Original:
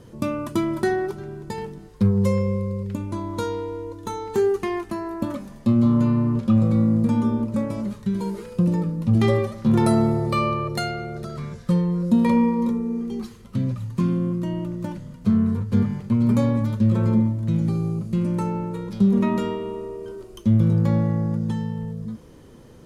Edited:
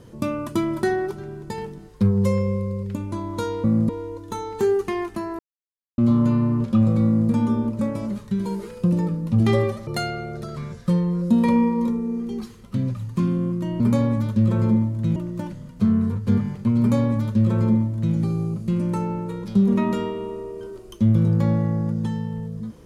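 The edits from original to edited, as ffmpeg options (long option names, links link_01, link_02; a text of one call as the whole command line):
ffmpeg -i in.wav -filter_complex "[0:a]asplit=8[link_01][link_02][link_03][link_04][link_05][link_06][link_07][link_08];[link_01]atrim=end=3.642[link_09];[link_02]atrim=start=6.798:end=7.052[link_10];[link_03]atrim=start=3.638:end=5.14,asetpts=PTS-STARTPTS,afade=type=out:start_time=1.498:duration=0.004:curve=hsin[link_11];[link_04]atrim=start=5.14:end=5.73,asetpts=PTS-STARTPTS,volume=0[link_12];[link_05]atrim=start=5.73:end=9.622,asetpts=PTS-STARTPTS,afade=type=in:duration=0.004:curve=hsin[link_13];[link_06]atrim=start=10.678:end=14.612[link_14];[link_07]atrim=start=16.238:end=17.602[link_15];[link_08]atrim=start=14.608[link_16];[link_09][link_10]acrossfade=duration=0.004:curve1=hsin:curve2=hsin[link_17];[link_11][link_12][link_13]concat=n=3:v=0:a=1[link_18];[link_17][link_18]acrossfade=duration=0.004:curve1=hsin:curve2=hsin[link_19];[link_19][link_14]acrossfade=duration=0.004:curve1=hsin:curve2=hsin[link_20];[link_20][link_15]acrossfade=duration=0.004:curve1=hsin:curve2=hsin[link_21];[link_21][link_16]acrossfade=duration=0.004:curve1=hsin:curve2=hsin" out.wav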